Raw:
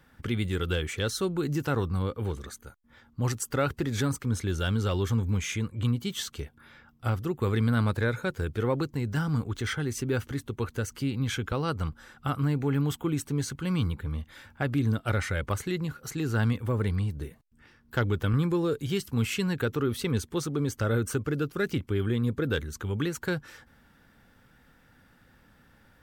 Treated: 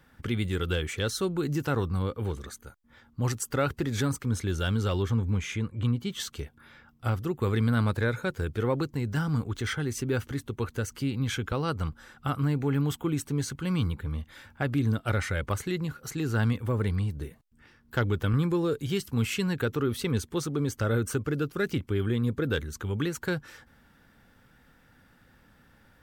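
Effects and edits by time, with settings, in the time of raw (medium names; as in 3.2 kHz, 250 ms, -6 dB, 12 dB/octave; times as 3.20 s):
5.02–6.20 s: treble shelf 4.9 kHz -9.5 dB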